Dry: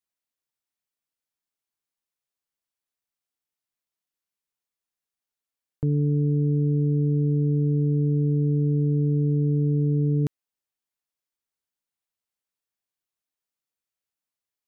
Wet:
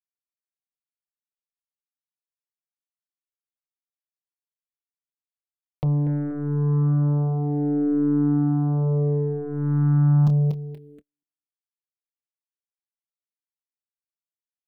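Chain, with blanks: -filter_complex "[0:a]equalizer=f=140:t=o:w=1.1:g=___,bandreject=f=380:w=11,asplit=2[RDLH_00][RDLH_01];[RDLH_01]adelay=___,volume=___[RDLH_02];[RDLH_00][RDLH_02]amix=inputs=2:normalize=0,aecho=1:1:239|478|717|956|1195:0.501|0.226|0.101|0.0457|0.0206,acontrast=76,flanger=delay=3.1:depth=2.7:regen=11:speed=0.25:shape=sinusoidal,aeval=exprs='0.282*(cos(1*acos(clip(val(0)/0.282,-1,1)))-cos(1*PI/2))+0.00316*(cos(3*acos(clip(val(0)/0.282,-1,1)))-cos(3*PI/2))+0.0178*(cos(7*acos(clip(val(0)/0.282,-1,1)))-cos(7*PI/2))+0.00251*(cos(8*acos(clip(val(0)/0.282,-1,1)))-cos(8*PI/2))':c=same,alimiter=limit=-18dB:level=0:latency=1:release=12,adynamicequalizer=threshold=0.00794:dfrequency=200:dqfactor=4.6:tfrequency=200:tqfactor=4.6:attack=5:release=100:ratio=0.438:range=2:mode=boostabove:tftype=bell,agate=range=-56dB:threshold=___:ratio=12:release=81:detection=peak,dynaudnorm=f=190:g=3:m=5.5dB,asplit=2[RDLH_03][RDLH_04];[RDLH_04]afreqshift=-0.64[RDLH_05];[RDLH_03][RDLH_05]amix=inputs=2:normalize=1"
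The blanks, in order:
-4.5, 27, -9dB, -47dB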